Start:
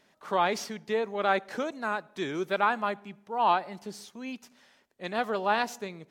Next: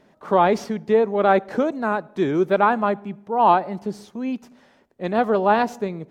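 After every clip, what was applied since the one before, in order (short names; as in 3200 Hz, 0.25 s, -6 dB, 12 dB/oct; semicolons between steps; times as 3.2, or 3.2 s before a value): tilt shelf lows +8 dB, about 1300 Hz; gain +5.5 dB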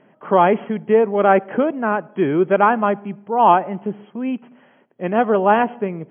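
FFT band-pass 110–3300 Hz; gain +3 dB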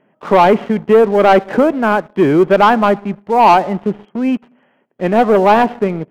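sample leveller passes 2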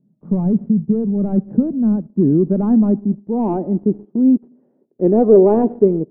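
low-pass sweep 180 Hz -> 380 Hz, 1.14–4.82; gain -2 dB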